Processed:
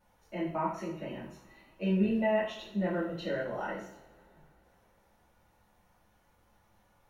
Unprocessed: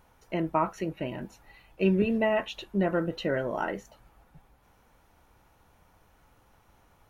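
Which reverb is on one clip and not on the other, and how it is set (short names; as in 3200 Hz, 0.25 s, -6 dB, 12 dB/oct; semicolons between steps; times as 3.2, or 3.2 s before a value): two-slope reverb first 0.53 s, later 3.6 s, from -27 dB, DRR -10 dB; gain -15.5 dB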